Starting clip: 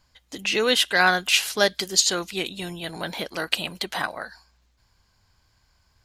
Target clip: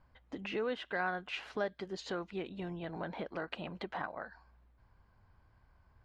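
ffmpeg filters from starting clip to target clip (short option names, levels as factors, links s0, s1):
-af "lowpass=1400,acompressor=threshold=0.00708:ratio=2"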